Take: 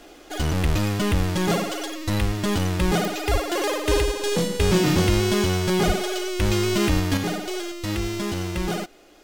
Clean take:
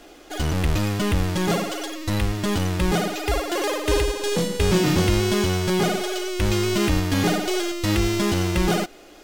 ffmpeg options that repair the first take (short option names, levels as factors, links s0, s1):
-filter_complex "[0:a]adeclick=t=4,asplit=3[s0][s1][s2];[s0]afade=t=out:st=3.31:d=0.02[s3];[s1]highpass=f=140:w=0.5412,highpass=f=140:w=1.3066,afade=t=in:st=3.31:d=0.02,afade=t=out:st=3.43:d=0.02[s4];[s2]afade=t=in:st=3.43:d=0.02[s5];[s3][s4][s5]amix=inputs=3:normalize=0,asplit=3[s6][s7][s8];[s6]afade=t=out:st=5.86:d=0.02[s9];[s7]highpass=f=140:w=0.5412,highpass=f=140:w=1.3066,afade=t=in:st=5.86:d=0.02,afade=t=out:st=5.98:d=0.02[s10];[s8]afade=t=in:st=5.98:d=0.02[s11];[s9][s10][s11]amix=inputs=3:normalize=0,asetnsamples=n=441:p=0,asendcmd='7.17 volume volume 5.5dB',volume=1"